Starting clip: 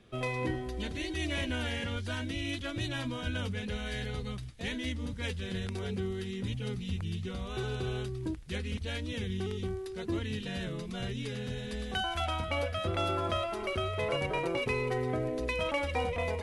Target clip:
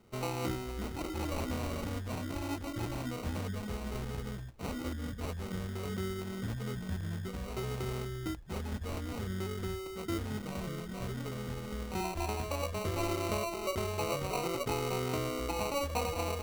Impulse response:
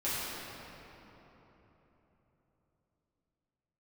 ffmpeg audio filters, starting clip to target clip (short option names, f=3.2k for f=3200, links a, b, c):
-af "acrusher=samples=26:mix=1:aa=0.000001,volume=-2dB"